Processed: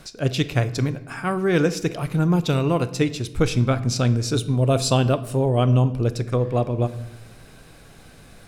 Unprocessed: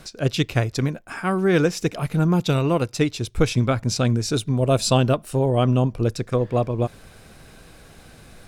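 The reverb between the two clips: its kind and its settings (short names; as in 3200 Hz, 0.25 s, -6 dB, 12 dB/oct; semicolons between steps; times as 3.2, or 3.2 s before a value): shoebox room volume 380 m³, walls mixed, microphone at 0.3 m; gain -1 dB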